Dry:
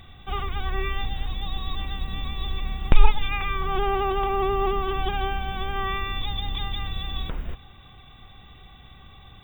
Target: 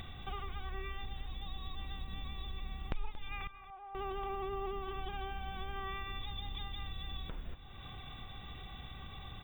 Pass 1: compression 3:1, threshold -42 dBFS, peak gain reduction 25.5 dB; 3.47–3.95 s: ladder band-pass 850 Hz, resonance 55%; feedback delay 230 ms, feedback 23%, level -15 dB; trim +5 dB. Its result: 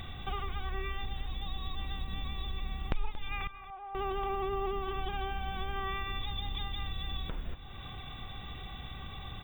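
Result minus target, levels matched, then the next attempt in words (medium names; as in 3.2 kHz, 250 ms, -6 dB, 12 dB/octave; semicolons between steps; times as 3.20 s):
compression: peak gain reduction -5.5 dB
compression 3:1, threshold -50 dBFS, peak gain reduction 31 dB; 3.47–3.95 s: ladder band-pass 850 Hz, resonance 55%; feedback delay 230 ms, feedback 23%, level -15 dB; trim +5 dB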